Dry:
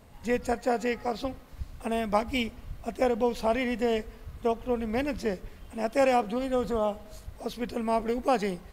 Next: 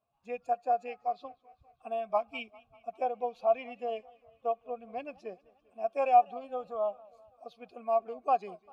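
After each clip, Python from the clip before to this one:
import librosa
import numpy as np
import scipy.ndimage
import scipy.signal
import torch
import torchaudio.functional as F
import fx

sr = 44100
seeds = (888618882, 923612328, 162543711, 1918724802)

y = fx.bin_expand(x, sr, power=1.5)
y = fx.vowel_filter(y, sr, vowel='a')
y = fx.echo_warbled(y, sr, ms=198, feedback_pct=59, rate_hz=2.8, cents=143, wet_db=-23.5)
y = y * 10.0 ** (6.5 / 20.0)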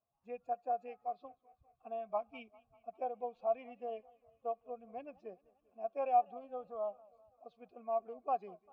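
y = fx.lowpass(x, sr, hz=1200.0, slope=6)
y = y * 10.0 ** (-6.0 / 20.0)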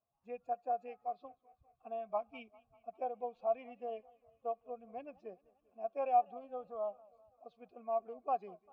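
y = x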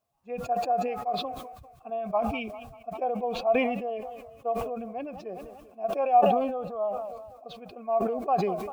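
y = fx.sustainer(x, sr, db_per_s=43.0)
y = y * 10.0 ** (8.5 / 20.0)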